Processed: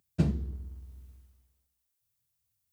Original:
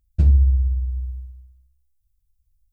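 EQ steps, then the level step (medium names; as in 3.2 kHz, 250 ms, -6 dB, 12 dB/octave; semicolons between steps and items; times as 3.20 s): high-pass 140 Hz 24 dB/octave; +4.0 dB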